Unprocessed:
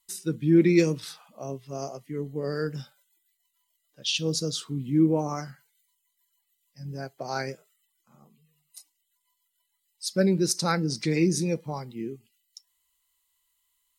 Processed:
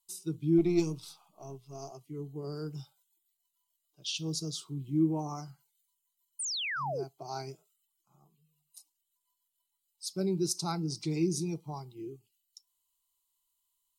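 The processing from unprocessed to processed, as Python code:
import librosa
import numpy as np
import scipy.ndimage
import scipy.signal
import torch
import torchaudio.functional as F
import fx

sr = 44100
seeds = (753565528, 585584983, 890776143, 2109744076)

y = fx.halfwave_gain(x, sr, db=-3.0, at=(0.58, 1.91))
y = fx.fixed_phaser(y, sr, hz=350.0, stages=8)
y = fx.spec_paint(y, sr, seeds[0], shape='fall', start_s=6.39, length_s=0.65, low_hz=350.0, high_hz=9800.0, level_db=-29.0)
y = y * 10.0 ** (-5.5 / 20.0)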